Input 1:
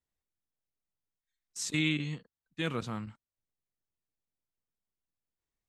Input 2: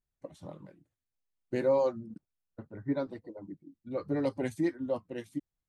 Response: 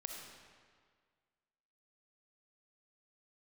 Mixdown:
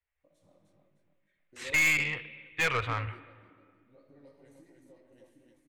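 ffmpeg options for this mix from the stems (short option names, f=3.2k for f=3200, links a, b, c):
-filter_complex "[0:a]firequalizer=gain_entry='entry(100,0);entry(190,-29);entry(430,-4);entry(2200,7);entry(5300,-30)':delay=0.05:min_phase=1,volume=-1dB,asplit=3[a][b][c];[b]volume=-11dB[d];[1:a]acompressor=threshold=-34dB:ratio=6,flanger=delay=17.5:depth=5.1:speed=2.7,volume=-19dB,asplit=3[e][f][g];[f]volume=-7dB[h];[g]volume=-13.5dB[i];[c]apad=whole_len=250600[j];[e][j]sidechaingate=range=-33dB:threshold=-59dB:ratio=16:detection=peak[k];[2:a]atrim=start_sample=2205[l];[d][h]amix=inputs=2:normalize=0[m];[m][l]afir=irnorm=-1:irlink=0[n];[i]aecho=0:1:305|610|915|1220|1525:1|0.34|0.116|0.0393|0.0134[o];[a][k][n][o]amix=inputs=4:normalize=0,highshelf=f=5.4k:g=10.5,dynaudnorm=f=150:g=3:m=10.5dB,aeval=exprs='(tanh(11.2*val(0)+0.2)-tanh(0.2))/11.2':c=same"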